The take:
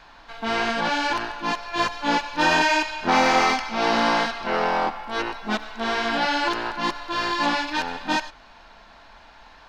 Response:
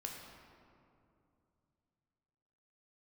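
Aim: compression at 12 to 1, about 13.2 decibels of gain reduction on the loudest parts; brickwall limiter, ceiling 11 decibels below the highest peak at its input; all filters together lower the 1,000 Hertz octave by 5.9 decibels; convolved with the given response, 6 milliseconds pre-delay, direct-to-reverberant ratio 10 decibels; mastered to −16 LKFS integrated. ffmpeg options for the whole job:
-filter_complex "[0:a]equalizer=frequency=1000:width_type=o:gain=-7.5,acompressor=threshold=-31dB:ratio=12,alimiter=level_in=6dB:limit=-24dB:level=0:latency=1,volume=-6dB,asplit=2[link_01][link_02];[1:a]atrim=start_sample=2205,adelay=6[link_03];[link_02][link_03]afir=irnorm=-1:irlink=0,volume=-8.5dB[link_04];[link_01][link_04]amix=inputs=2:normalize=0,volume=23dB"

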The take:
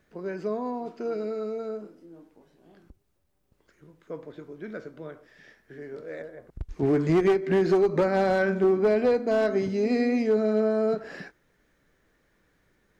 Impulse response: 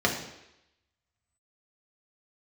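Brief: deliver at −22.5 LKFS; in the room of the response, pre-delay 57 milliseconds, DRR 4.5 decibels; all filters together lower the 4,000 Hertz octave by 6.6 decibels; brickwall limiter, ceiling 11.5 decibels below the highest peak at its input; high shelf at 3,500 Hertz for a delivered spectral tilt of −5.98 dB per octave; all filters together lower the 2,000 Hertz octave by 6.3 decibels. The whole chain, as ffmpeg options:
-filter_complex "[0:a]equalizer=frequency=2000:width_type=o:gain=-7.5,highshelf=frequency=3500:gain=-3.5,equalizer=frequency=4000:width_type=o:gain=-3.5,alimiter=level_in=3dB:limit=-24dB:level=0:latency=1,volume=-3dB,asplit=2[link_01][link_02];[1:a]atrim=start_sample=2205,adelay=57[link_03];[link_02][link_03]afir=irnorm=-1:irlink=0,volume=-18dB[link_04];[link_01][link_04]amix=inputs=2:normalize=0,volume=11dB"

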